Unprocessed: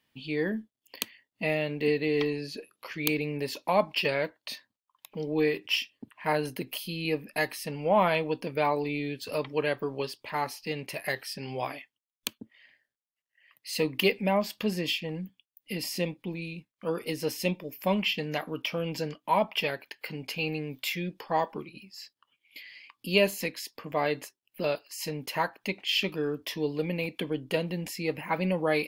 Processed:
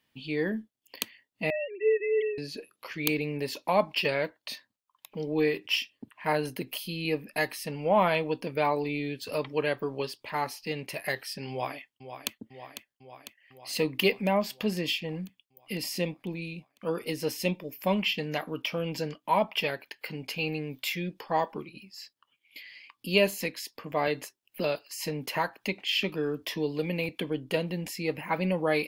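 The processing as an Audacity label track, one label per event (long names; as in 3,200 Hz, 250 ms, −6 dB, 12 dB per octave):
1.500000	2.380000	three sine waves on the formant tracks
11.500000	12.330000	delay throw 500 ms, feedback 70%, level −10 dB
24.070000	27.090000	multiband upward and downward compressor depth 40%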